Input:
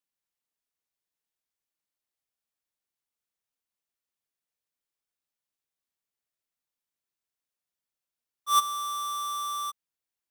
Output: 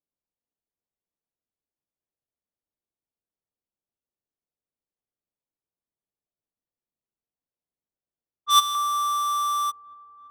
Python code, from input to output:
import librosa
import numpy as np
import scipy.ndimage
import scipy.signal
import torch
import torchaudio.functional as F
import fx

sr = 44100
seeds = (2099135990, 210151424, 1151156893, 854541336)

y = fx.peak_eq(x, sr, hz=fx.steps((0.0, 3500.0), (8.75, 990.0)), db=6.5, octaves=0.92)
y = fx.env_lowpass(y, sr, base_hz=640.0, full_db=-27.0)
y = fx.echo_wet_lowpass(y, sr, ms=336, feedback_pct=80, hz=460.0, wet_db=-13.0)
y = F.gain(torch.from_numpy(y), 3.5).numpy()